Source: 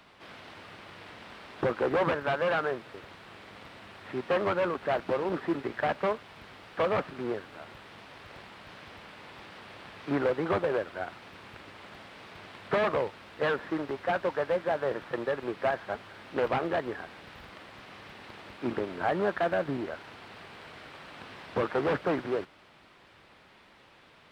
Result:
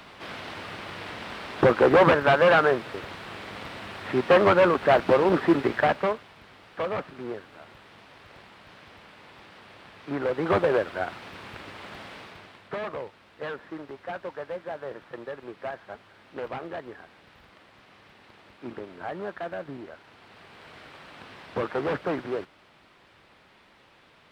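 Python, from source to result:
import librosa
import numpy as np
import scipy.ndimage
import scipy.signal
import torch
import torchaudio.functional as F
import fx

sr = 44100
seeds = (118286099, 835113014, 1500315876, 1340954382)

y = fx.gain(x, sr, db=fx.line((5.7, 9.5), (6.36, -2.0), (10.17, -2.0), (10.57, 6.0), (12.14, 6.0), (12.7, -6.5), (20.04, -6.5), (20.76, 0.0)))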